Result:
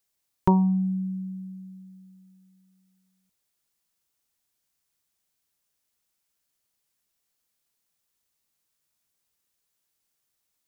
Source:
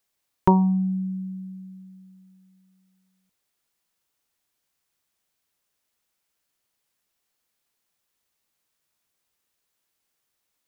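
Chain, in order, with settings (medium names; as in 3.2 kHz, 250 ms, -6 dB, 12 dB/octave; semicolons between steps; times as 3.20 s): tone controls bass +4 dB, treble +5 dB; trim -4.5 dB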